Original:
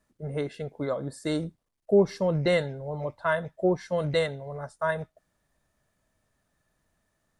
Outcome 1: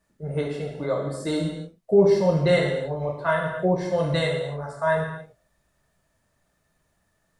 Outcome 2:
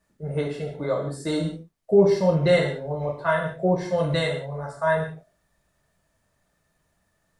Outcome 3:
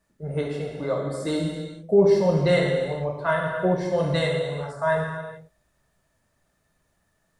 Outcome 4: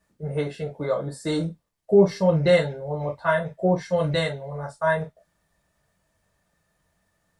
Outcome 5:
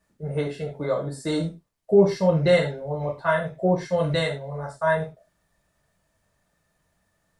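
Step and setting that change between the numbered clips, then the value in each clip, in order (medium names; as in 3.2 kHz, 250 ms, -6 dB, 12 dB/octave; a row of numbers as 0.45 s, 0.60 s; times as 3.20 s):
gated-style reverb, gate: 320 ms, 210 ms, 470 ms, 80 ms, 130 ms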